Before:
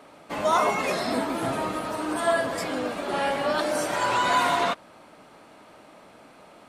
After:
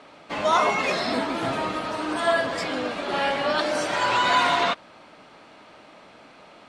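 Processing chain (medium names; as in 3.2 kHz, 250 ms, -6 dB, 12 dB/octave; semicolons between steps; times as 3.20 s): low-pass 4.3 kHz 12 dB/octave; treble shelf 2.3 kHz +9.5 dB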